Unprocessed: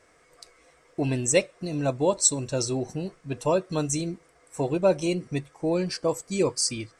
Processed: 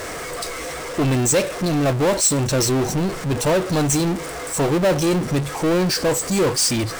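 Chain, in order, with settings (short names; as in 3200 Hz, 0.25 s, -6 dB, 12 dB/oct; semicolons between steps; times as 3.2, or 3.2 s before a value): bell 2600 Hz -3 dB; power-law curve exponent 0.35; gain -3.5 dB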